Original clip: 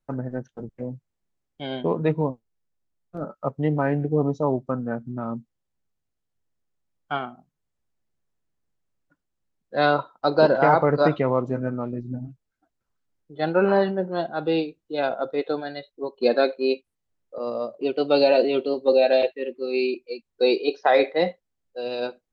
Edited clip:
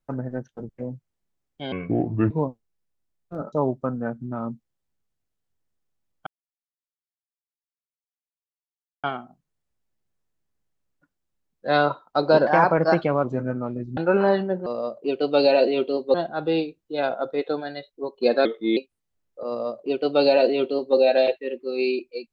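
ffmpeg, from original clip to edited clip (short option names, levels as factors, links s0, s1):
-filter_complex "[0:a]asplit=12[s0][s1][s2][s3][s4][s5][s6][s7][s8][s9][s10][s11];[s0]atrim=end=1.724[s12];[s1]atrim=start=1.72:end=2.13,asetpts=PTS-STARTPTS,asetrate=30870,aresample=44100[s13];[s2]atrim=start=2.126:end=3.352[s14];[s3]atrim=start=4.378:end=7.12,asetpts=PTS-STARTPTS,afade=t=out:st=2.738:d=0.004:c=hsin,apad=pad_dur=2.77[s15];[s4]atrim=start=7.12:end=10.554,asetpts=PTS-STARTPTS,afade=t=in:d=0.004:c=hsin[s16];[s5]atrim=start=10.55:end=11.41,asetpts=PTS-STARTPTS,asetrate=48951,aresample=44100[s17];[s6]atrim=start=11.406:end=12.142[s18];[s7]atrim=start=13.448:end=14.142[s19];[s8]atrim=start=17.428:end=18.912[s20];[s9]atrim=start=14.138:end=16.454[s21];[s10]atrim=start=16.45:end=16.72,asetpts=PTS-STARTPTS,asetrate=37485,aresample=44100,atrim=end_sample=14008,asetpts=PTS-STARTPTS[s22];[s11]atrim=start=16.716[s23];[s12][s13]acrossfade=d=0.004:c1=hsin:c2=hsin[s24];[s24][s14]acrossfade=d=0.004:c1=hsin:c2=hsin[s25];[s15][s16]concat=n=2:v=0:a=1[s26];[s25][s26]acrossfade=d=0.004:c1=hsin:c2=hsin[s27];[s27][s17]acrossfade=d=0.004:c1=hsin:c2=hsin[s28];[s28][s18]acrossfade=d=0.004:c1=hsin:c2=hsin[s29];[s29][s19]acrossfade=d=0.004:c1=hsin:c2=hsin[s30];[s30][s20]acrossfade=d=0.004:c1=hsin:c2=hsin[s31];[s31][s21]acrossfade=d=0.004:c1=hsin:c2=hsin[s32];[s32][s22]acrossfade=d=0.004:c1=hsin:c2=hsin[s33];[s33][s23]acrossfade=d=0.004:c1=hsin:c2=hsin"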